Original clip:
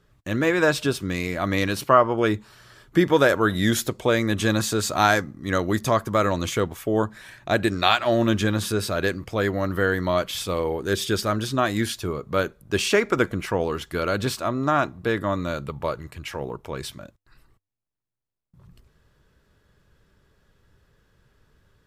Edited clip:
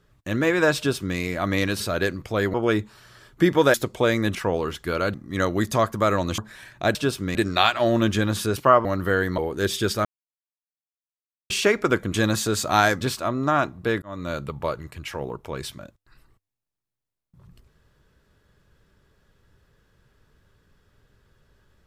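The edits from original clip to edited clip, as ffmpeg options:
-filter_complex "[0:a]asplit=17[a][b][c][d][e][f][g][h][i][j][k][l][m][n][o][p][q];[a]atrim=end=1.802[r];[b]atrim=start=8.818:end=9.562[s];[c]atrim=start=2.088:end=3.292[t];[d]atrim=start=3.788:end=4.402[u];[e]atrim=start=13.418:end=14.212[v];[f]atrim=start=5.268:end=6.512[w];[g]atrim=start=7.038:end=7.612[x];[h]atrim=start=0.768:end=1.172[y];[i]atrim=start=7.608:end=8.822[z];[j]atrim=start=1.798:end=2.092[aa];[k]atrim=start=9.558:end=10.092[ab];[l]atrim=start=10.658:end=11.33,asetpts=PTS-STARTPTS,afade=t=out:st=0.668:d=0.004:c=hsin[ac];[m]atrim=start=11.33:end=12.78,asetpts=PTS-STARTPTS,volume=0[ad];[n]atrim=start=12.78:end=13.422,asetpts=PTS-STARTPTS,afade=t=in:d=0.004:c=hsin[ae];[o]atrim=start=4.398:end=5.272[af];[p]atrim=start=14.208:end=15.22,asetpts=PTS-STARTPTS,afade=t=out:st=1.008:d=0.004:c=hsin[ag];[q]atrim=start=15.22,asetpts=PTS-STARTPTS,afade=t=in:d=0.33[ah];[r][s]acrossfade=d=0.004:c1=hsin:c2=hsin[ai];[ai][t]acrossfade=d=0.004:c1=hsin:c2=hsin[aj];[aj][u]acrossfade=d=0.004:c1=hsin:c2=hsin[ak];[ak][v]acrossfade=d=0.004:c1=hsin:c2=hsin[al];[al][w]acrossfade=d=0.004:c1=hsin:c2=hsin[am];[am][x]acrossfade=d=0.004:c1=hsin:c2=hsin[an];[an][y]acrossfade=d=0.004:c1=hsin:c2=hsin[ao];[ao][z]acrossfade=d=0.004:c1=hsin:c2=hsin[ap];[ap][aa]acrossfade=d=0.004:c1=hsin:c2=hsin[aq];[aq][ab]acrossfade=d=0.004:c1=hsin:c2=hsin[ar];[ac][ad][ae]concat=n=3:v=0:a=1[as];[ar][as]acrossfade=d=0.004:c1=hsin:c2=hsin[at];[at][af]acrossfade=d=0.004:c1=hsin:c2=hsin[au];[ag][ah]concat=n=2:v=0:a=1[av];[au][av]acrossfade=d=0.004:c1=hsin:c2=hsin"

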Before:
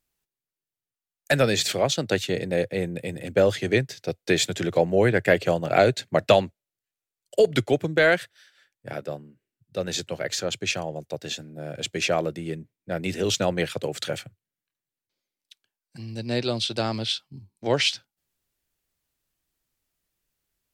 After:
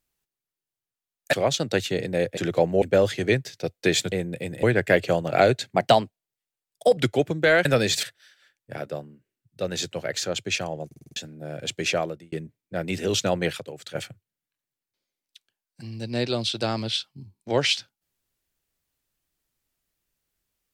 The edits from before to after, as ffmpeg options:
-filter_complex "[0:a]asplit=19[a][b][c][d][e][f][g][h][i][j][k][l][m][n][o][p][q][r][s];[a]atrim=end=1.332[t];[b]atrim=start=1.708:end=2.752[u];[c]atrim=start=4.558:end=5.012[v];[d]atrim=start=3.258:end=4.562[w];[e]atrim=start=2.748:end=3.262[x];[f]atrim=start=5.008:end=6.144[y];[g]atrim=start=6.14:end=7.51,asetpts=PTS-STARTPTS,asetrate=49833,aresample=44100,atrim=end_sample=53466,asetpts=PTS-STARTPTS[z];[h]atrim=start=7.506:end=8.192[aa];[i]atrim=start=1.328:end=1.712[ab];[j]atrim=start=8.188:end=11.072[ac];[k]atrim=start=11.018:end=11.072[ad];[l]atrim=start=11.018:end=11.072[ae];[m]atrim=start=11.018:end=11.072[af];[n]atrim=start=11.018:end=11.072[ag];[o]atrim=start=11.018:end=11.072[ah];[p]atrim=start=11.318:end=12.48,asetpts=PTS-STARTPTS,afade=t=out:st=0.752:d=0.41[ai];[q]atrim=start=12.48:end=13.762,asetpts=PTS-STARTPTS,afade=t=in:d=0.004:c=hsin[aj];[r]atrim=start=13.758:end=14.112,asetpts=PTS-STARTPTS,volume=-9.5dB[ak];[s]atrim=start=14.108[al];[t][u]acrossfade=d=0.004:c1=hsin:c2=hsin[am];[am][v]acrossfade=d=0.004:c1=hsin:c2=hsin[an];[an][w]acrossfade=d=0.004:c1=hsin:c2=hsin[ao];[ao][x]acrossfade=d=0.004:c1=hsin:c2=hsin[ap];[ap][y]acrossfade=d=0.004:c1=hsin:c2=hsin[aq];[aq][z]acrossfade=d=0.004:c1=hsin:c2=hsin[ar];[ar][aa]acrossfade=d=0.004:c1=hsin:c2=hsin[as];[as][ab]acrossfade=d=0.004:c1=hsin:c2=hsin[at];[at][ac]acrossfade=d=0.004:c1=hsin:c2=hsin[au];[au][ad]acrossfade=d=0.004:c1=hsin:c2=hsin[av];[av][ae]acrossfade=d=0.004:c1=hsin:c2=hsin[aw];[aw][af]acrossfade=d=0.004:c1=hsin:c2=hsin[ax];[ax][ag]acrossfade=d=0.004:c1=hsin:c2=hsin[ay];[ay][ah]acrossfade=d=0.004:c1=hsin:c2=hsin[az];[ai][aj]concat=n=2:v=0:a=1[ba];[az][ba]acrossfade=d=0.004:c1=hsin:c2=hsin[bb];[bb][ak]acrossfade=d=0.004:c1=hsin:c2=hsin[bc];[bc][al]acrossfade=d=0.004:c1=hsin:c2=hsin"

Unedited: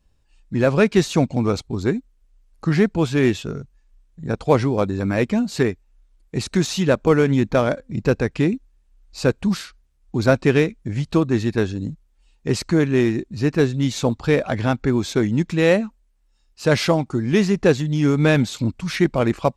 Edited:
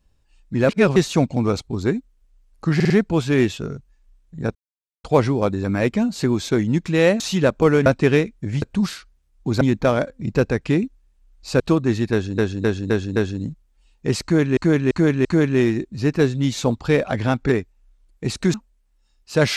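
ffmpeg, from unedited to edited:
-filter_complex "[0:a]asplit=22[a][b][c][d][e][f][g][h][i][j][k][l][m][n][o][p][q][r][s][t][u][v];[a]atrim=end=0.692[w];[b]atrim=start=0.688:end=0.962,asetpts=PTS-STARTPTS,areverse[x];[c]atrim=start=0.958:end=2.802[y];[d]atrim=start=2.748:end=2.802[z];[e]atrim=start=2.748:end=2.802[aa];[f]atrim=start=2.748:end=4.4,asetpts=PTS-STARTPTS,afade=t=out:st=1.648:d=0.004:c=hsin,apad=pad_dur=0.49[ab];[g]atrim=start=4.4:end=5.602,asetpts=PTS-STARTPTS,afade=t=in:d=0.004:c=hsin[ac];[h]atrim=start=14.878:end=15.842[ad];[i]atrim=start=6.648:end=7.312[ae];[j]atrim=start=10.288:end=11.052[af];[k]atrim=start=9.298:end=10.292[ag];[l]atrim=start=7.308:end=9.302[ah];[m]atrim=start=11.048:end=11.832[ai];[n]atrim=start=11.568:end=11.832[aj];[o]atrim=start=11.568:end=11.832[ak];[p]atrim=start=11.568:end=11.832[al];[q]atrim=start=11.568:end=12.982[am];[r]atrim=start=12.638:end=12.982[an];[s]atrim=start=12.638:end=12.982[ao];[t]atrim=start=12.638:end=14.882[ap];[u]atrim=start=5.598:end=6.652[aq];[v]atrim=start=15.838[ar];[w][x]acrossfade=d=0.004:c1=hsin:c2=hsin[as];[as][y]acrossfade=d=0.004:c1=hsin:c2=hsin[at];[at][z]acrossfade=d=0.004:c1=hsin:c2=hsin[au];[au][aa]acrossfade=d=0.004:c1=hsin:c2=hsin[av];[ab][ac]concat=n=2:v=0:a=1[aw];[av][aw]acrossfade=d=0.004:c1=hsin:c2=hsin[ax];[ax][ad]acrossfade=d=0.004:c1=hsin:c2=hsin[ay];[ay][ae]acrossfade=d=0.004:c1=hsin:c2=hsin[az];[az][af]acrossfade=d=0.004:c1=hsin:c2=hsin[ba];[ba][ag]acrossfade=d=0.004:c1=hsin:c2=hsin[bb];[bb][ah]acrossfade=d=0.004:c1=hsin:c2=hsin[bc];[bc][ai]acrossfade=d=0.004:c1=hsin:c2=hsin[bd];[bd][aj]acrossfade=d=0.004:c1=hsin:c2=hsin[be];[be][ak]acrossfade=d=0.004:c1=hsin:c2=hsin[bf];[bf][al]acrossfade=d=0.004:c1=hsin:c2=hsin[bg];[bg][am]acrossfade=d=0.004:c1=hsin:c2=hsin[bh];[bh][an]acrossfade=d=0.004:c1=hsin:c2=hsin[bi];[bi][ao]acrossfade=d=0.004:c1=hsin:c2=hsin[bj];[bj][ap]acrossfade=d=0.004:c1=hsin:c2=hsin[bk];[bk][aq]acrossfade=d=0.004:c1=hsin:c2=hsin[bl];[bl][ar]acrossfade=d=0.004:c1=hsin:c2=hsin"

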